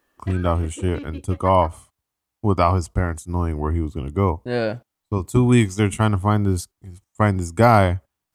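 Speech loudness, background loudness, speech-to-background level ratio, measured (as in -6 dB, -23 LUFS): -21.0 LUFS, -40.0 LUFS, 19.0 dB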